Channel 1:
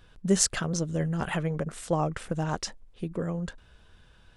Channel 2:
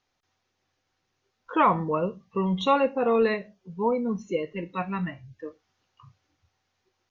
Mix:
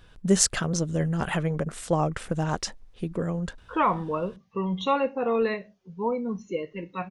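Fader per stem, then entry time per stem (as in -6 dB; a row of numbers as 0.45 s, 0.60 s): +2.5 dB, -2.5 dB; 0.00 s, 2.20 s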